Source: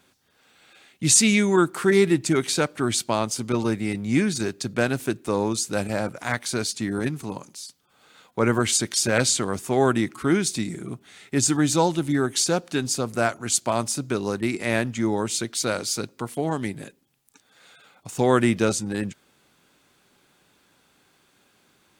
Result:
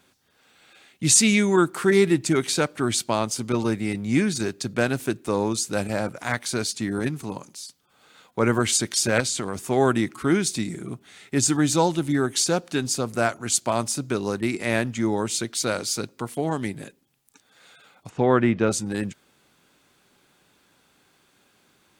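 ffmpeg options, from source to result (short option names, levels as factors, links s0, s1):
-filter_complex "[0:a]asettb=1/sr,asplit=3[s0][s1][s2];[s0]atrim=end=9.204[s3];[s1]atrim=start=9.2:end=9.6,asetpts=PTS-STARTPTS,afade=t=in:d=0.004:c=qsin,afade=t=out:st=0.396:d=0.004:c=qsin,acompressor=threshold=0.0708:ratio=4:attack=3.2:release=140:knee=1:detection=peak[s4];[s2]atrim=start=9.596[s5];[s3][s4]acrossfade=d=0.004:c1=hsin:c2=qsin[s6];[s6][s5]acrossfade=d=0.004:c1=qsin:c2=hsin,asplit=3[s7][s8][s9];[s7]afade=t=out:st=18.08:d=0.02[s10];[s8]lowpass=2400,afade=t=in:st=18.08:d=0.02,afade=t=out:st=18.71:d=0.02[s11];[s9]afade=t=in:st=18.71:d=0.02[s12];[s10][s11][s12]amix=inputs=3:normalize=0"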